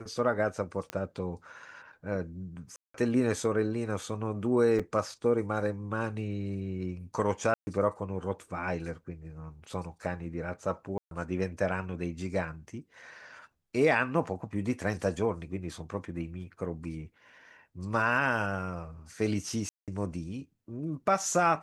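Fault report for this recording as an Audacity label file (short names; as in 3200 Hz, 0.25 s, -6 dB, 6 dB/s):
0.900000	0.900000	pop -19 dBFS
2.760000	2.940000	gap 0.184 s
4.790000	4.800000	gap 5.5 ms
7.540000	7.670000	gap 0.13 s
10.980000	11.110000	gap 0.132 s
19.690000	19.880000	gap 0.187 s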